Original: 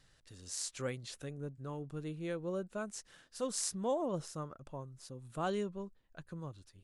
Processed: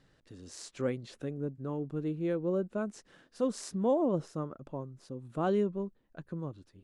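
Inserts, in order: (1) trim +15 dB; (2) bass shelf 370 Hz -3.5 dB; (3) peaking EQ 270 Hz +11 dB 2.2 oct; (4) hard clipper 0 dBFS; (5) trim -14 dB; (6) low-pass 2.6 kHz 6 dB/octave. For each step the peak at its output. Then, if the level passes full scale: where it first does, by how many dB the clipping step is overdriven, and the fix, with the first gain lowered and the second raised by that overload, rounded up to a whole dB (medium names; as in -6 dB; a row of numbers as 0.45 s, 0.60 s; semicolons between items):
-3.5 dBFS, -3.5 dBFS, -3.5 dBFS, -3.5 dBFS, -17.5 dBFS, -19.0 dBFS; nothing clips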